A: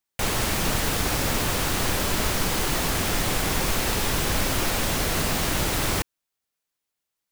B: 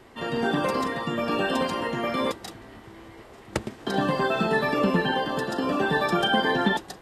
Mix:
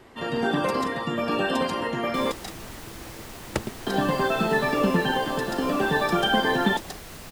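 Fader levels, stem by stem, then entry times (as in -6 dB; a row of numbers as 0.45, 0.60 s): -17.0, +0.5 dB; 1.95, 0.00 s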